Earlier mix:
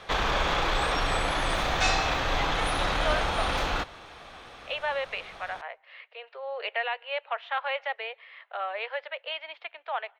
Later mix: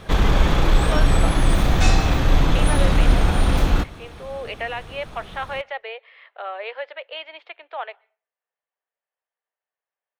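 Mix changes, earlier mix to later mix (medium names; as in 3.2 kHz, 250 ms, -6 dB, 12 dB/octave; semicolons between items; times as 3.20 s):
speech: entry -2.15 s; master: remove three-band isolator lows -16 dB, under 500 Hz, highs -13 dB, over 6.7 kHz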